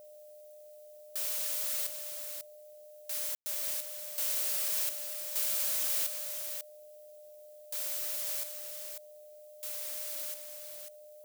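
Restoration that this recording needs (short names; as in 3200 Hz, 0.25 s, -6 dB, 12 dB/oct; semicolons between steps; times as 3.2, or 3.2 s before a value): notch 600 Hz, Q 30; room tone fill 3.35–3.46; expander -45 dBFS, range -21 dB; inverse comb 0.544 s -7 dB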